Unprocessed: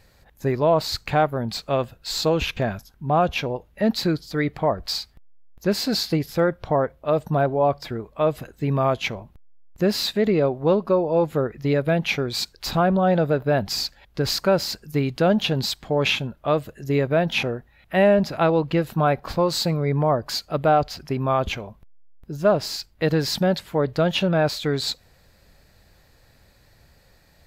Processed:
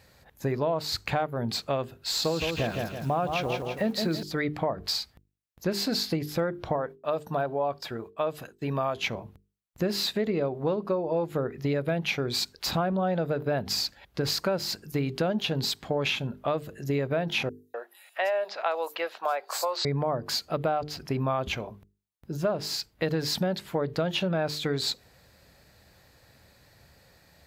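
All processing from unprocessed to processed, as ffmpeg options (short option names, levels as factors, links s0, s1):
-filter_complex "[0:a]asettb=1/sr,asplit=3[s0][s1][s2];[s0]atrim=end=2.084[s3];[s1]atrim=start=2.08:end=4.23,asetpts=PTS-STARTPTS,afade=t=in:d=0.004:c=qsin,afade=t=out:st=2.146:d=0.004:c=qsin,acrusher=bits=9:dc=4:mix=0:aa=0.000001,aecho=1:1:165|330|495|660|825:0.473|0.185|0.072|0.0281|0.0109,atrim=end_sample=94815[s4];[s2]atrim=start=4.226[s5];[s3][s4]acrossfade=d=0.004:c1=hsin:c2=qsin[s6];[s6][s5]acrossfade=d=0.004:c1=qsin:c2=hsin,asettb=1/sr,asplit=3[s7][s8][s9];[s7]atrim=end=6.764[s10];[s8]atrim=start=6.76:end=8.96,asetpts=PTS-STARTPTS,afade=t=in:d=0.004:c=qsin,afade=t=out:st=2.196:d=0.004:c=qsin,agate=range=0.0224:threshold=0.00891:ratio=3:release=100:detection=peak,lowshelf=f=350:g=-9,bandreject=f=2100:w=8.4[s11];[s9]atrim=start=8.956[s12];[s10][s11]acrossfade=d=0.004:c1=hsin:c2=qsin[s13];[s13][s12]acrossfade=d=0.004:c1=qsin:c2=hsin,asettb=1/sr,asplit=3[s14][s15][s16];[s14]atrim=end=17.494[s17];[s15]atrim=start=17.49:end=19.85,asetpts=PTS-STARTPTS,afade=t=in:d=0.004:c=qsin,afade=t=out:st=2.356:d=0.004:c=qsin,highpass=f=560:w=0.5412,highpass=f=560:w=1.3066,acrossover=split=5900[s18][s19];[s18]adelay=250[s20];[s20][s19]amix=inputs=2:normalize=0,atrim=end_sample=104076[s21];[s16]atrim=start=19.846[s22];[s17][s21]acrossfade=d=0.004:c1=hsin:c2=qsin[s23];[s23][s22]acrossfade=d=0.004:c1=qsin:c2=hsin,highpass=69,bandreject=f=50:t=h:w=6,bandreject=f=100:t=h:w=6,bandreject=f=150:t=h:w=6,bandreject=f=200:t=h:w=6,bandreject=f=250:t=h:w=6,bandreject=f=300:t=h:w=6,bandreject=f=350:t=h:w=6,bandreject=f=400:t=h:w=6,bandreject=f=450:t=h:w=6,acompressor=threshold=0.0562:ratio=4"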